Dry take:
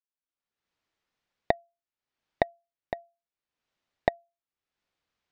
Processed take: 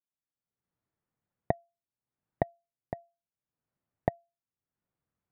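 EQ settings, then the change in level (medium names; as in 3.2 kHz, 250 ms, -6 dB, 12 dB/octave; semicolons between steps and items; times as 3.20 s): low-pass 1.5 kHz 12 dB/octave; peaking EQ 130 Hz +12.5 dB 1.9 oct; -5.5 dB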